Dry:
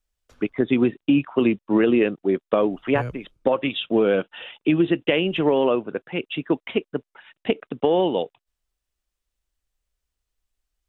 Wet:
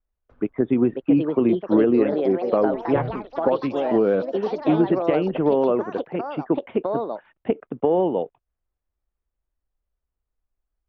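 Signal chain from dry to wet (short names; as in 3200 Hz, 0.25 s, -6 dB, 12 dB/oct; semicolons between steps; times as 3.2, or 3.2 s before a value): LPF 1200 Hz 12 dB/oct; echoes that change speed 0.629 s, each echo +4 st, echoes 3, each echo -6 dB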